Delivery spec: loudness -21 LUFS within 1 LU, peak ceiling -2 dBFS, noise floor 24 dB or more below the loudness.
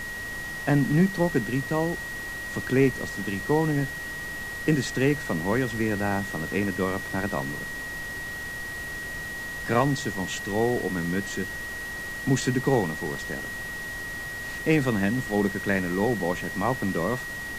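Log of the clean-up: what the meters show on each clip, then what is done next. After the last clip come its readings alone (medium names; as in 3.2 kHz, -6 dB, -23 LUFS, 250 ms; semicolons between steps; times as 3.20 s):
steady tone 1.9 kHz; tone level -33 dBFS; noise floor -35 dBFS; noise floor target -51 dBFS; loudness -27.0 LUFS; peak level -9.0 dBFS; loudness target -21.0 LUFS
-> band-stop 1.9 kHz, Q 30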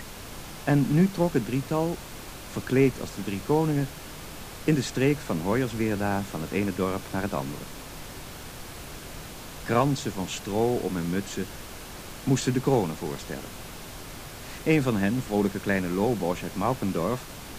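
steady tone not found; noise floor -41 dBFS; noise floor target -51 dBFS
-> noise print and reduce 10 dB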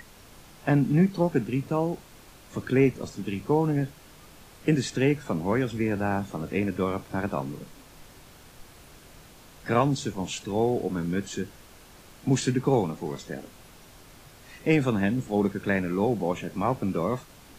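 noise floor -51 dBFS; loudness -27.0 LUFS; peak level -9.5 dBFS; loudness target -21.0 LUFS
-> trim +6 dB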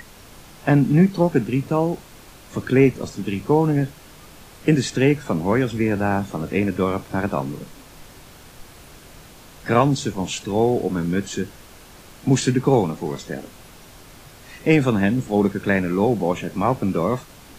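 loudness -21.0 LUFS; peak level -3.5 dBFS; noise floor -45 dBFS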